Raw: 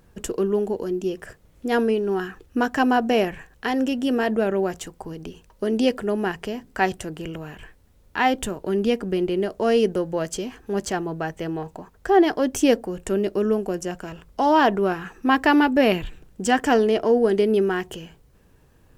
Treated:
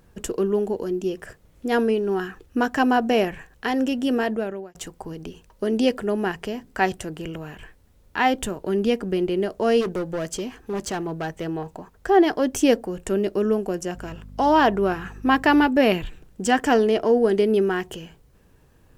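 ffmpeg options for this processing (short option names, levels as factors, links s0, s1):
-filter_complex "[0:a]asplit=3[s0][s1][s2];[s0]afade=t=out:st=9.8:d=0.02[s3];[s1]volume=14.1,asoftclip=hard,volume=0.0708,afade=t=in:st=9.8:d=0.02,afade=t=out:st=11.45:d=0.02[s4];[s2]afade=t=in:st=11.45:d=0.02[s5];[s3][s4][s5]amix=inputs=3:normalize=0,asettb=1/sr,asplit=3[s6][s7][s8];[s6]atrim=end=13.964[s9];[s7]atrim=start=13.96:end=15.67,asetpts=PTS-STARTPTS,afade=t=in:d=0.004:c=qsin,afade=t=out:st=1.706:d=0.004:c=qsin,aeval=exprs='val(0)+0.0112*(sin(2*PI*50*n/s)+sin(2*PI*2*50*n/s)/2+sin(2*PI*3*50*n/s)/3+sin(2*PI*4*50*n/s)/4+sin(2*PI*5*50*n/s)/5)':c=same[s10];[s8]atrim=start=15.666[s11];[s9][s10]acrossfade=d=0.004:c1=hsin:c2=qsin[s12];[s12][s11]acrossfade=d=0.004:c1=qsin:c2=hsin,asplit=2[s13][s14];[s13]atrim=end=4.75,asetpts=PTS-STARTPTS,afade=t=out:st=4.17:d=0.58[s15];[s14]atrim=start=4.75,asetpts=PTS-STARTPTS,afade=t=in:d=0.004:c=hsin[s16];[s15][s16]concat=n=2:v=0:a=1"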